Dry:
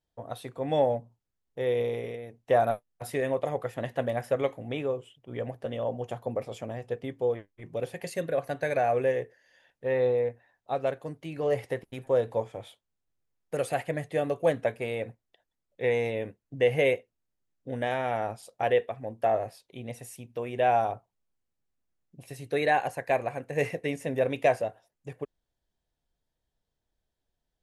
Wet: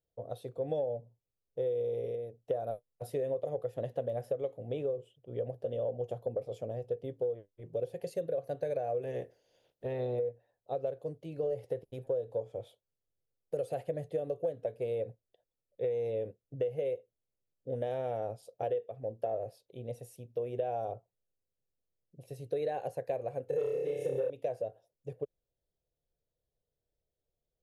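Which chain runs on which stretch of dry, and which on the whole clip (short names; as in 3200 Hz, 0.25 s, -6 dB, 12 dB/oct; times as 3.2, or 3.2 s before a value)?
9.02–10.18 spectral limiter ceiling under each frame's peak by 19 dB + compressor 3:1, threshold -29 dBFS
23.47–24.3 comb 2.3 ms, depth 95% + flutter echo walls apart 5.1 m, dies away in 0.96 s + core saturation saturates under 820 Hz
whole clip: graphic EQ 125/250/500/1000/2000/8000 Hz +5/-5/+12/-8/-11/-6 dB; compressor 12:1, threshold -23 dBFS; gain -6.5 dB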